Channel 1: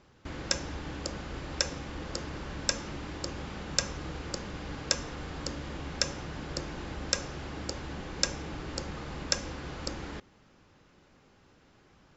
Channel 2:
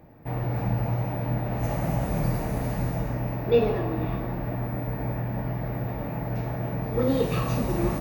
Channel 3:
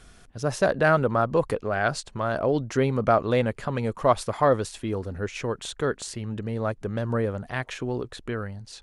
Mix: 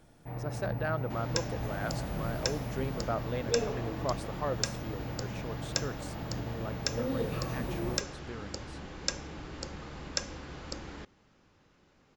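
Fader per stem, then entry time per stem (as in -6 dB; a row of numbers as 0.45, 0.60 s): -4.0, -10.0, -13.5 dB; 0.85, 0.00, 0.00 s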